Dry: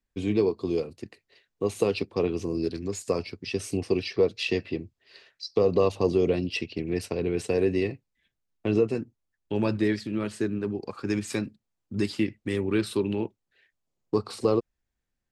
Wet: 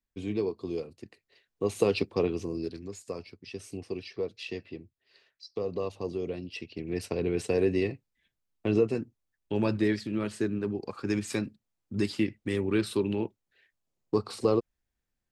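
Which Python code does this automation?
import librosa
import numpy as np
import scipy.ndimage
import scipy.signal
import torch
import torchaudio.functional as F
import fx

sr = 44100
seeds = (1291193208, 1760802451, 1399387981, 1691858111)

y = fx.gain(x, sr, db=fx.line((1.02, -6.5), (2.03, 1.0), (3.03, -10.5), (6.49, -10.5), (7.12, -1.5)))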